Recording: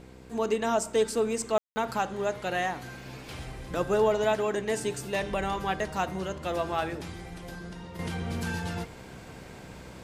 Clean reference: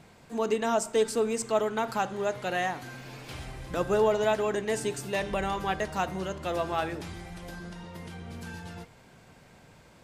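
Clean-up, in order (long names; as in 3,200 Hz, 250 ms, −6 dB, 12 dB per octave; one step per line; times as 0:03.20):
hum removal 63.7 Hz, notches 8
ambience match 0:01.58–0:01.76
level correction −8.5 dB, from 0:07.99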